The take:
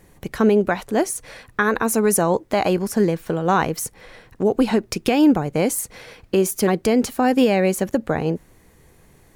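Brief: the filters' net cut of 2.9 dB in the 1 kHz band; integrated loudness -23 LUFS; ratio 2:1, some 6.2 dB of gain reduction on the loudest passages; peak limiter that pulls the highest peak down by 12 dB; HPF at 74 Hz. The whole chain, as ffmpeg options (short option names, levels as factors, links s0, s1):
-af "highpass=74,equalizer=f=1000:t=o:g=-4,acompressor=threshold=0.0708:ratio=2,volume=2.66,alimiter=limit=0.211:level=0:latency=1"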